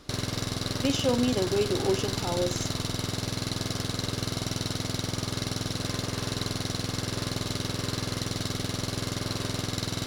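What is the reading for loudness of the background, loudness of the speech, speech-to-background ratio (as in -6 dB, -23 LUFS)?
-31.0 LUFS, -29.0 LUFS, 2.0 dB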